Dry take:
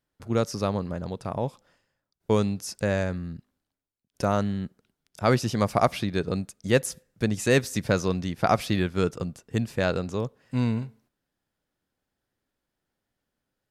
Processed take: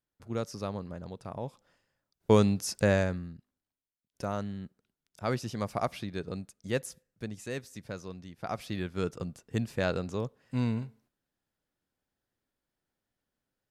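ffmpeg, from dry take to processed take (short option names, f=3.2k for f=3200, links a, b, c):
-af "volume=13dB,afade=t=in:st=1.45:d=0.86:silence=0.316228,afade=t=out:st=2.89:d=0.45:silence=0.298538,afade=t=out:st=6.77:d=0.78:silence=0.446684,afade=t=in:st=8.38:d=1.02:silence=0.251189"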